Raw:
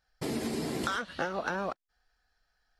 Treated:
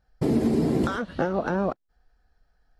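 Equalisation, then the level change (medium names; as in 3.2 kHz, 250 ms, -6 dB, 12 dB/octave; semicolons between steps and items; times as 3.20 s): tilt shelf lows +9 dB, about 890 Hz; +4.5 dB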